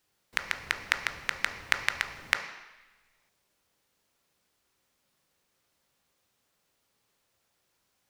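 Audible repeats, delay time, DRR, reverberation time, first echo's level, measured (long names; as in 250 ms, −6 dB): no echo audible, no echo audible, 4.0 dB, 1.1 s, no echo audible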